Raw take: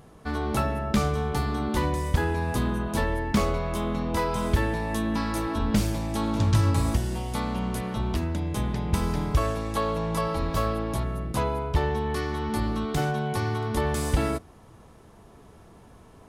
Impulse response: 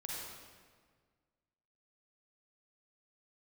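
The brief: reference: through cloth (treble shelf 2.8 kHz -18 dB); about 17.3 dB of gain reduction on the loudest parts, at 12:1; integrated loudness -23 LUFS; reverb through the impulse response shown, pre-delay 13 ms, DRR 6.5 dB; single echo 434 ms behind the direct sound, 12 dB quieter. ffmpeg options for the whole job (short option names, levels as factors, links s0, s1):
-filter_complex "[0:a]acompressor=threshold=0.0178:ratio=12,aecho=1:1:434:0.251,asplit=2[s0][s1];[1:a]atrim=start_sample=2205,adelay=13[s2];[s1][s2]afir=irnorm=-1:irlink=0,volume=0.473[s3];[s0][s3]amix=inputs=2:normalize=0,highshelf=f=2800:g=-18,volume=6.31"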